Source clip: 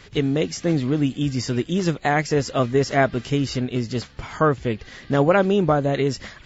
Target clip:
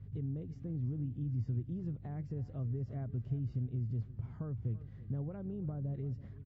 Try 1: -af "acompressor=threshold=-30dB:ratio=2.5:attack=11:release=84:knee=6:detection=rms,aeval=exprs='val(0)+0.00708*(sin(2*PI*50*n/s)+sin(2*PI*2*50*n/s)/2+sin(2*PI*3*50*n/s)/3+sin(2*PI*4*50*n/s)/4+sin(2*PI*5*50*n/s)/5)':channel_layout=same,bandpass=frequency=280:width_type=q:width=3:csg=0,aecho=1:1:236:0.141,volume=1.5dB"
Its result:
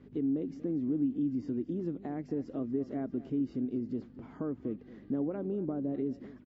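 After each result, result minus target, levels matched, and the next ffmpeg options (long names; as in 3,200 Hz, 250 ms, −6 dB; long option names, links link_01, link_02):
125 Hz band −13.0 dB; echo 99 ms early
-af "acompressor=threshold=-30dB:ratio=2.5:attack=11:release=84:knee=6:detection=rms,aeval=exprs='val(0)+0.00708*(sin(2*PI*50*n/s)+sin(2*PI*2*50*n/s)/2+sin(2*PI*3*50*n/s)/3+sin(2*PI*4*50*n/s)/4+sin(2*PI*5*50*n/s)/5)':channel_layout=same,bandpass=frequency=110:width_type=q:width=3:csg=0,aecho=1:1:236:0.141,volume=1.5dB"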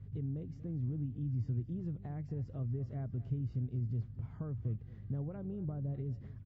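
echo 99 ms early
-af "acompressor=threshold=-30dB:ratio=2.5:attack=11:release=84:knee=6:detection=rms,aeval=exprs='val(0)+0.00708*(sin(2*PI*50*n/s)+sin(2*PI*2*50*n/s)/2+sin(2*PI*3*50*n/s)/3+sin(2*PI*4*50*n/s)/4+sin(2*PI*5*50*n/s)/5)':channel_layout=same,bandpass=frequency=110:width_type=q:width=3:csg=0,aecho=1:1:335:0.141,volume=1.5dB"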